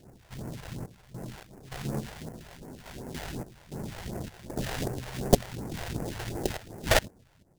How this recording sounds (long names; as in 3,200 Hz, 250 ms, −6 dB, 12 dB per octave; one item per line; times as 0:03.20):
sample-and-hold tremolo, depth 85%
aliases and images of a low sample rate 1,200 Hz, jitter 20%
phaser sweep stages 2, 2.7 Hz, lowest notch 220–3,400 Hz